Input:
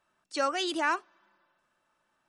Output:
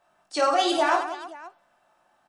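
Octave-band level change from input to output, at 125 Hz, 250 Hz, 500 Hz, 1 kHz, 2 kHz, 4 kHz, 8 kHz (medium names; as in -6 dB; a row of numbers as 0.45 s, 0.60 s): no reading, +6.0 dB, +9.0 dB, +8.5 dB, +2.5 dB, +5.5 dB, +5.0 dB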